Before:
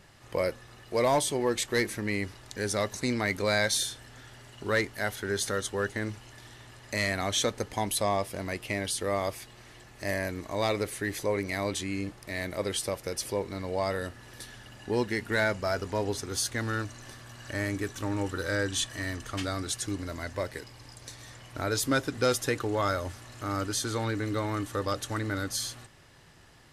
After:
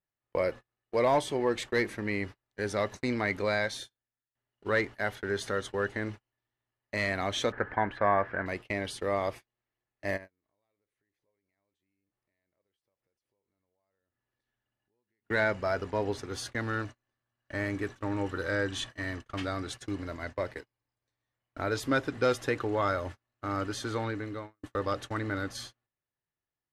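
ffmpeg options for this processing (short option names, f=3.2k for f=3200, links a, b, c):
-filter_complex "[0:a]asettb=1/sr,asplit=3[a][b][c];[a]atrim=end=7.524[d];[b]atrim=start=7.52:end=8.46,asetpts=PTS-STARTPTS,afade=t=in:d=0.004:c=qsin,afade=t=out:st=0.936:d=0.004:c=qsin,lowpass=f=1.6k:t=q:w=7.7[e];[c]atrim=start=8.456[f];[d][e]acrossfade=d=0.004:c1=hsin:c2=qsin[g];[g][f]acrossfade=d=0.004:c1=qsin:c2=hsin,asplit=3[h][i][j];[h]afade=t=out:st=10.16:d=0.02[k];[i]acompressor=threshold=-41dB:ratio=12:attack=3.2:release=140:knee=1:detection=peak,afade=t=in:st=10.16:d=0.02,afade=t=out:st=15.24:d=0.02[l];[j]afade=t=in:st=15.24:d=0.02[m];[k][l][m]amix=inputs=3:normalize=0,asplit=3[n][o][p];[n]atrim=end=4.35,asetpts=PTS-STARTPTS,afade=t=out:st=3.33:d=1.02:silence=0.105925[q];[o]atrim=start=4.35:end=24.63,asetpts=PTS-STARTPTS,afade=t=in:d=0.004:c=hsin:silence=0.105925,afade=t=out:st=19.61:d=0.67:silence=0.0749894[r];[p]atrim=start=24.63,asetpts=PTS-STARTPTS,afade=t=in:d=0.004:c=hsin:silence=0.0749894[s];[q][r][s]concat=n=3:v=0:a=1,bass=f=250:g=-3,treble=f=4k:g=-9,agate=range=-37dB:threshold=-39dB:ratio=16:detection=peak,highshelf=f=7.9k:g=-8"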